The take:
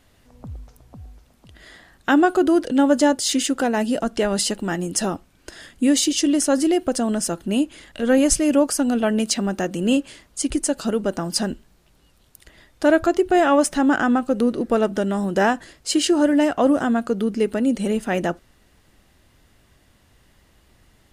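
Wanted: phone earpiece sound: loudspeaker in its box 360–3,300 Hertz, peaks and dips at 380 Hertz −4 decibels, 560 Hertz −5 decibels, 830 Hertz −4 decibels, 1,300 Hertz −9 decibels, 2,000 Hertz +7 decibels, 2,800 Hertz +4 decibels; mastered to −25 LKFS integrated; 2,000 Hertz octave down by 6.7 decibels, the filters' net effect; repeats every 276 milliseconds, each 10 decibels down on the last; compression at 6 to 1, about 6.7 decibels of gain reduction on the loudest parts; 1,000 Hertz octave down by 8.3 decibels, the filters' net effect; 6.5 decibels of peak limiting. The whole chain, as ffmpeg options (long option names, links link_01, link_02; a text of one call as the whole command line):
ffmpeg -i in.wav -af "equalizer=frequency=1000:width_type=o:gain=-4.5,equalizer=frequency=2000:width_type=o:gain=-8,acompressor=threshold=-20dB:ratio=6,alimiter=limit=-17dB:level=0:latency=1,highpass=360,equalizer=frequency=380:width_type=q:width=4:gain=-4,equalizer=frequency=560:width_type=q:width=4:gain=-5,equalizer=frequency=830:width_type=q:width=4:gain=-4,equalizer=frequency=1300:width_type=q:width=4:gain=-9,equalizer=frequency=2000:width_type=q:width=4:gain=7,equalizer=frequency=2800:width_type=q:width=4:gain=4,lowpass=frequency=3300:width=0.5412,lowpass=frequency=3300:width=1.3066,aecho=1:1:276|552|828|1104:0.316|0.101|0.0324|0.0104,volume=8dB" out.wav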